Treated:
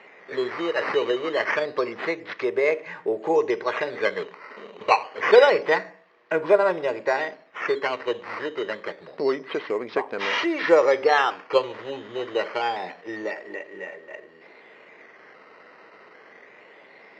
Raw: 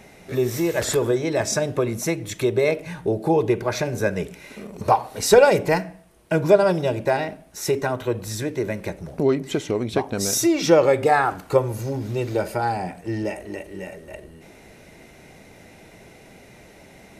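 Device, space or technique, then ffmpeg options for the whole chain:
circuit-bent sampling toy: -af "acrusher=samples=9:mix=1:aa=0.000001:lfo=1:lforange=9:lforate=0.27,highpass=440,equalizer=f=460:t=q:w=4:g=5,equalizer=f=710:t=q:w=4:g=-3,equalizer=f=1.1k:t=q:w=4:g=6,equalizer=f=1.9k:t=q:w=4:g=8,equalizer=f=3.5k:t=q:w=4:g=-5,lowpass=f=4.1k:w=0.5412,lowpass=f=4.1k:w=1.3066,volume=-1.5dB"

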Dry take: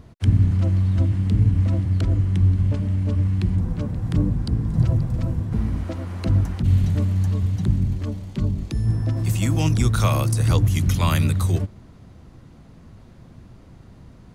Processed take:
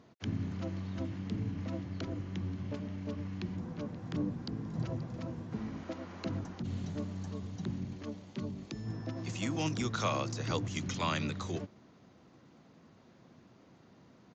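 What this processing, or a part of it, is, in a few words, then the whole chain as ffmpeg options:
Bluetooth headset: -filter_complex "[0:a]asettb=1/sr,asplit=3[a][b][c];[a]atrim=end=6.394[d];[b]atrim=start=6.39:end=7.63,asetpts=PTS-STARTPTS,afade=t=in:d=0.004:c=qsin,afade=t=out:st=1.236:d=0.004:c=qsin,equalizer=f=2.3k:w=0.86:g=-4.5[e];[c]atrim=start=7.626[f];[d][e]acrossfade=d=0.004:c1=hsin:c2=qsin[g];[g][f]acrossfade=d=0.004:c1=qsin:c2=hsin,highpass=220,aresample=16000,aresample=44100,volume=-7.5dB" -ar 16000 -c:a sbc -b:a 64k

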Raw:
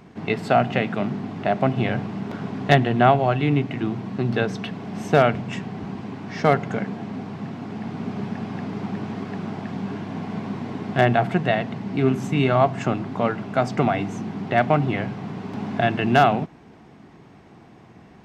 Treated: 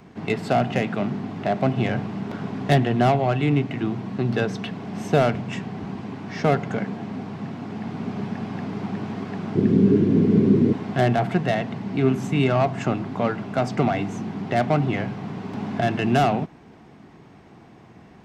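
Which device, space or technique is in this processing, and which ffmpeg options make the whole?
one-band saturation: -filter_complex "[0:a]asettb=1/sr,asplit=3[a][b][c];[a]atrim=end=9.554[d];[b]atrim=start=9.55:end=10.73,asetpts=PTS-STARTPTS,afade=t=in:d=0.004:c=qsin,afade=t=out:st=1.176:d=0.004:c=qsin,lowshelf=f=550:t=q:w=3:g=11[e];[c]atrim=start=10.726[f];[d][e]acrossfade=d=0.004:c1=hsin:c2=qsin[g];[g][f]acrossfade=d=0.004:c1=qsin:c2=hsin,acrossover=split=550|4600[h][i][j];[i]asoftclip=type=tanh:threshold=-20dB[k];[h][k][j]amix=inputs=3:normalize=0"

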